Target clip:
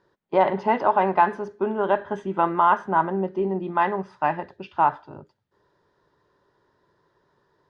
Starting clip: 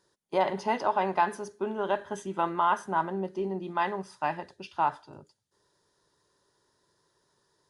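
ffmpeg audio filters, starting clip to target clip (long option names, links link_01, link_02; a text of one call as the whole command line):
ffmpeg -i in.wav -af "lowpass=2200,volume=7dB" out.wav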